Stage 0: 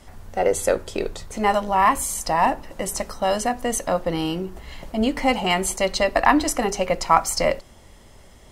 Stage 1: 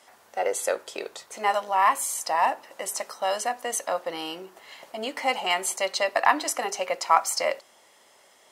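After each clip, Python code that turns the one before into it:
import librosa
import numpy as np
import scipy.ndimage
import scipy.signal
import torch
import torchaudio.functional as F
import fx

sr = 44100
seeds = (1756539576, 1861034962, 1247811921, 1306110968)

y = scipy.signal.sosfilt(scipy.signal.butter(2, 580.0, 'highpass', fs=sr, output='sos'), x)
y = y * librosa.db_to_amplitude(-2.5)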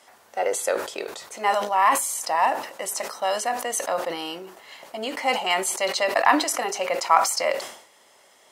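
y = fx.sustainer(x, sr, db_per_s=90.0)
y = y * librosa.db_to_amplitude(1.5)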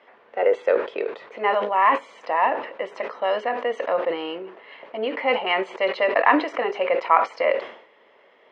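y = fx.cabinet(x, sr, low_hz=160.0, low_slope=12, high_hz=2700.0, hz=(170.0, 460.0, 780.0, 1400.0), db=(-4, 7, -5, -3))
y = y * librosa.db_to_amplitude(2.5)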